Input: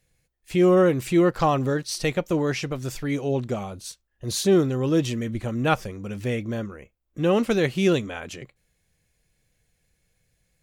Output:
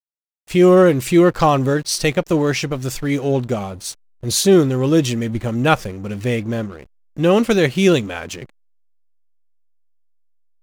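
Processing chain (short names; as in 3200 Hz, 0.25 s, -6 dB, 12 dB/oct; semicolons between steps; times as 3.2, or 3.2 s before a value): high shelf 4800 Hz +5 dB; backlash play -40.5 dBFS; gain +6.5 dB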